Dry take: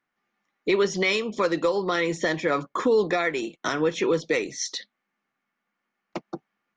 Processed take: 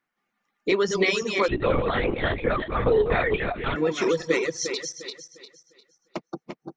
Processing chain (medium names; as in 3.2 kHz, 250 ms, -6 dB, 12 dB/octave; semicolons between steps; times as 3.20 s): backward echo that repeats 176 ms, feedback 56%, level -3.5 dB; reverb removal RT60 0.73 s; 1.48–3.76 s: LPC vocoder at 8 kHz whisper